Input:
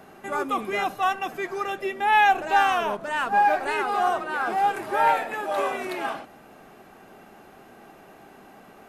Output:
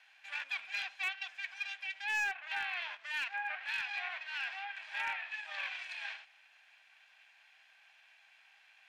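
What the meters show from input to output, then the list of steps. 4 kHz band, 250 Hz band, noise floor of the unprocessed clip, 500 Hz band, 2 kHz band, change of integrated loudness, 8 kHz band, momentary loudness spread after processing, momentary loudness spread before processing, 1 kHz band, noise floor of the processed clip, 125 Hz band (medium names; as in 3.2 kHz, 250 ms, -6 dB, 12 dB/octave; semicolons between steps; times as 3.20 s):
-6.0 dB, under -40 dB, -50 dBFS, -33.0 dB, -8.5 dB, -13.5 dB, -10.5 dB, 7 LU, 11 LU, -24.5 dB, -65 dBFS, no reading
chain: comb filter that takes the minimum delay 1.2 ms; low-pass that closes with the level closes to 2.1 kHz, closed at -17.5 dBFS; ladder band-pass 2.9 kHz, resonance 40%; overload inside the chain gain 34.5 dB; trim +5.5 dB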